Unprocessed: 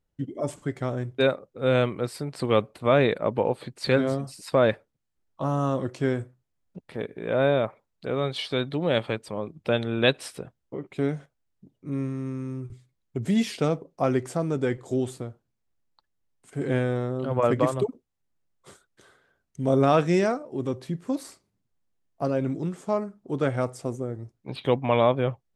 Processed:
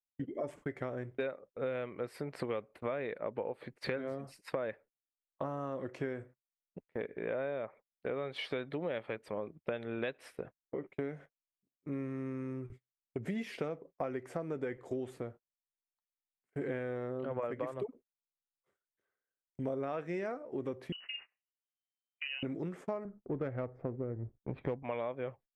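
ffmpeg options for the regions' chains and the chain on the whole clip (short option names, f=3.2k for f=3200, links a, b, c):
-filter_complex "[0:a]asettb=1/sr,asplit=3[a][b][c];[a]atrim=end=20.924[d];[b]atrim=start=20.92:end=22.43,asetpts=PTS-STARTPTS,afade=t=in:d=0.004:c=qsin,afade=t=out:st=1.506:d=0.004:c=qsin,acompressor=threshold=-35dB:ratio=4:attack=3.2:release=140:knee=1:detection=peak,asplit=2[e][f];[f]adelay=29,volume=-9.5dB[g];[e][g]amix=inputs=2:normalize=0,atrim=end_sample=66591,lowpass=f=2.6k:t=q:w=0.5098,lowpass=f=2.6k:t=q:w=0.6013,lowpass=f=2.6k:t=q:w=0.9,lowpass=f=2.6k:t=q:w=2.563,afreqshift=-3100[h];[c]atrim=start=22.426[i];[d][h]acrossfade=d=0.004:c1=hsin:c2=qsin[j];[j][i]acrossfade=d=0.004:c1=qsin:c2=hsin,asettb=1/sr,asplit=3[k][l][m];[k]atrim=end=23.054[n];[l]atrim=start=23.05:end=24.83,asetpts=PTS-STARTPTS,afade=t=in:d=0.004:c=qsin,afade=t=out:st=1.776:d=0.004:c=qsin,aemphasis=mode=reproduction:type=bsi,bandreject=f=2.9k:w=8.7,adynamicsmooth=sensitivity=2.5:basefreq=1.4k[o];[m]atrim=start=24.826[p];[n][o]acrossfade=d=0.004:c1=hsin:c2=qsin[q];[q][p]acrossfade=d=0.004:c1=qsin:c2=hsin,agate=range=-29dB:threshold=-42dB:ratio=16:detection=peak,equalizer=f=125:t=o:w=1:g=-4,equalizer=f=500:t=o:w=1:g=5,equalizer=f=2k:t=o:w=1:g=8,equalizer=f=4k:t=o:w=1:g=-6,equalizer=f=8k:t=o:w=1:g=-9,acompressor=threshold=-28dB:ratio=10,volume=-5.5dB"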